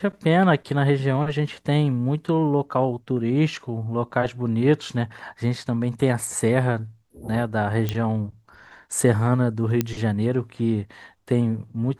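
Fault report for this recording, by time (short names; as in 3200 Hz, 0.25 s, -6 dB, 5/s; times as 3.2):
7.89 pop -11 dBFS
9.81 pop -8 dBFS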